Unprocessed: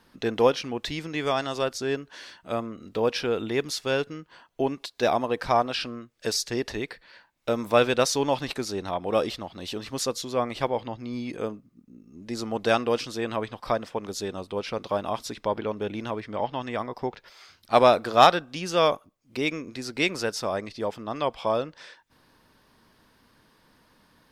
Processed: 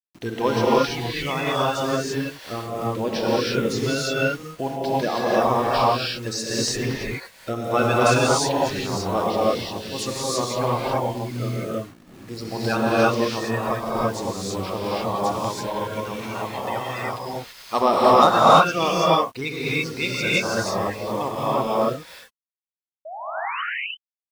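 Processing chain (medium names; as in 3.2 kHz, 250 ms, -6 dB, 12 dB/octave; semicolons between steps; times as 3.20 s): coarse spectral quantiser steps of 30 dB; 15.43–17.81 s: tilt shelf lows -5 dB, about 1.3 kHz; bit crusher 8-bit; 23.05–23.62 s: painted sound rise 600–3100 Hz -33 dBFS; gated-style reverb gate 360 ms rising, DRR -7 dB; trim -2 dB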